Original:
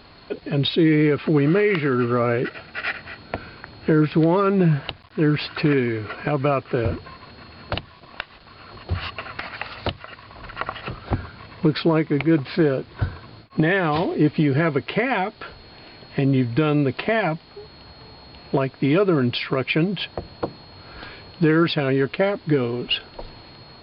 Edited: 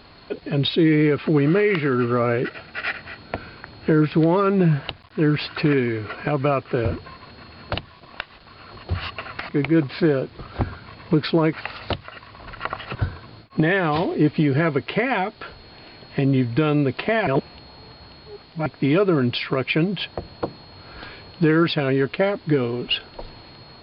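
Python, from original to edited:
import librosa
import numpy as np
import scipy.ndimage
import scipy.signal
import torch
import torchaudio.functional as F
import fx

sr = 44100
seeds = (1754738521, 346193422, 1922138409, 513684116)

y = fx.edit(x, sr, fx.swap(start_s=9.49, length_s=1.42, other_s=12.05, other_length_s=0.9),
    fx.reverse_span(start_s=17.27, length_s=1.39), tone=tone)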